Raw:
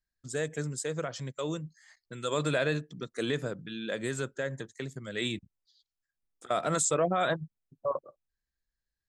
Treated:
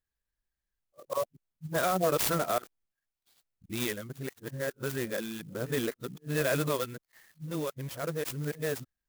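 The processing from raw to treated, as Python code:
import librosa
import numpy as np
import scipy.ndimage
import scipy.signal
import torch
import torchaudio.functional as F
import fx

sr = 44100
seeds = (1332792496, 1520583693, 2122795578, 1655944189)

y = np.flip(x).copy()
y = fx.clock_jitter(y, sr, seeds[0], jitter_ms=0.049)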